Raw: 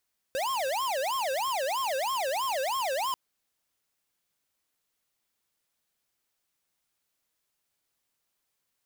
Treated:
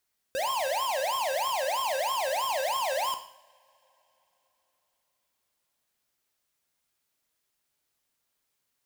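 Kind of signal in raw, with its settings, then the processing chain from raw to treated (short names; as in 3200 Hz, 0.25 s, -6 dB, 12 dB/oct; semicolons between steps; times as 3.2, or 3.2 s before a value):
siren wail 520–1080 Hz 3.1/s square -29.5 dBFS 2.79 s
two-slope reverb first 0.6 s, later 4 s, from -28 dB, DRR 6.5 dB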